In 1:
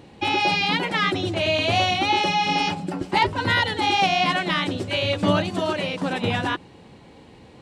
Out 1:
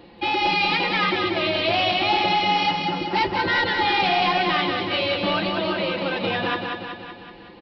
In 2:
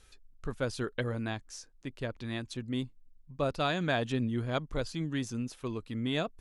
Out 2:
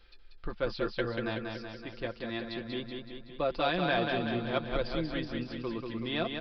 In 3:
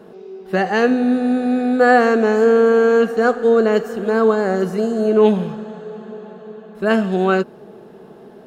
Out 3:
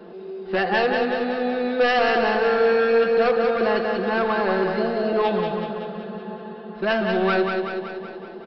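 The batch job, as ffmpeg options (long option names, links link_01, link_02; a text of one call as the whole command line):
ffmpeg -i in.wav -filter_complex "[0:a]acrossover=split=420[link_01][link_02];[link_01]acompressor=threshold=-25dB:ratio=6[link_03];[link_03][link_02]amix=inputs=2:normalize=0,equalizer=frequency=140:width_type=o:width=0.45:gain=-12.5,aecho=1:1:5.8:0.55,aresample=11025,asoftclip=type=tanh:threshold=-16dB,aresample=44100,aecho=1:1:188|376|564|752|940|1128|1316|1504:0.596|0.351|0.207|0.122|0.0722|0.0426|0.0251|0.0148" out.wav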